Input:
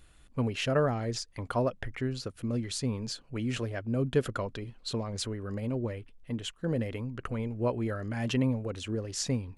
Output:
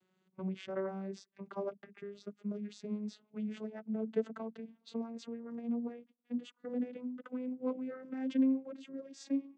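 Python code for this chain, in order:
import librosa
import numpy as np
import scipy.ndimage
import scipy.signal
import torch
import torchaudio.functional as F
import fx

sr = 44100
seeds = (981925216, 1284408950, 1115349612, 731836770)

y = fx.vocoder_glide(x, sr, note=54, semitones=7)
y = F.gain(torch.from_numpy(y), -5.5).numpy()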